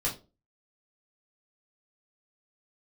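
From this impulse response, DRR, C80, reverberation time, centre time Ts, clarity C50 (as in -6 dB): -6.5 dB, 18.0 dB, 0.30 s, 21 ms, 11.0 dB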